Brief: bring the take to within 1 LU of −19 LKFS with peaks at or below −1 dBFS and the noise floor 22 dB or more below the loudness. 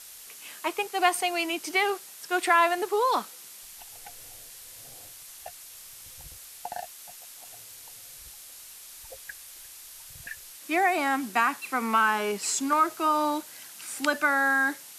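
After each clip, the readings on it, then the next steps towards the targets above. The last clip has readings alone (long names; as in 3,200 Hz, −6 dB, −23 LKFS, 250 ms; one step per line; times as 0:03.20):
background noise floor −47 dBFS; target noise floor −48 dBFS; integrated loudness −26.0 LKFS; sample peak −8.5 dBFS; target loudness −19.0 LKFS
→ broadband denoise 6 dB, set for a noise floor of −47 dBFS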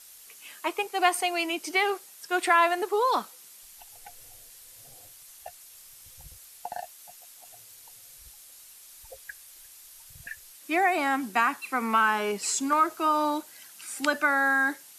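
background noise floor −51 dBFS; integrated loudness −25.5 LKFS; sample peak −8.5 dBFS; target loudness −19.0 LKFS
→ level +6.5 dB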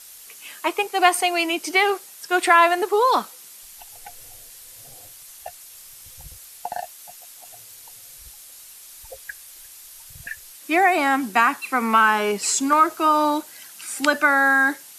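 integrated loudness −19.0 LKFS; sample peak −2.0 dBFS; background noise floor −44 dBFS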